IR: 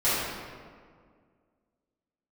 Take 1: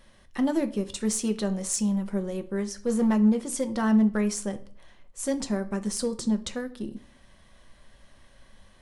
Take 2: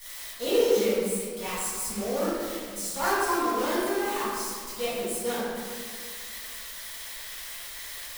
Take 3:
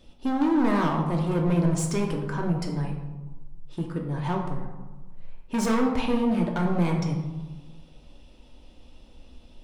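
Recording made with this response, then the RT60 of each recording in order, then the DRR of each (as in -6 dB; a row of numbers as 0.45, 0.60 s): 2; 0.50, 1.9, 1.2 s; 8.0, -14.0, 0.5 dB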